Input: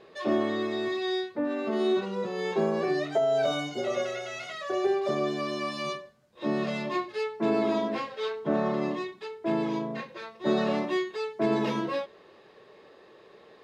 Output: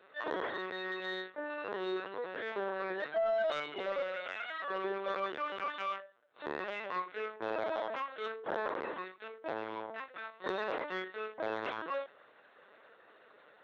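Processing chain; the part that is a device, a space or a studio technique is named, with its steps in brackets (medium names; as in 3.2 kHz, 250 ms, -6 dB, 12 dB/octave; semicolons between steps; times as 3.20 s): 3.68–4.17 s: tone controls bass +10 dB, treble +2 dB; talking toy (LPC vocoder at 8 kHz pitch kept; high-pass 480 Hz 12 dB/octave; peaking EQ 1.5 kHz +9 dB 0.55 oct; saturation -19.5 dBFS, distortion -21 dB); trim -4.5 dB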